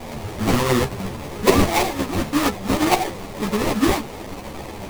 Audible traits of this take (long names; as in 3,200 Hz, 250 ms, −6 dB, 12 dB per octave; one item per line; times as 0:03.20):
a quantiser's noise floor 6 bits, dither triangular
phaser sweep stages 8, 1.8 Hz, lowest notch 500–1,500 Hz
aliases and images of a low sample rate 1,500 Hz, jitter 20%
a shimmering, thickened sound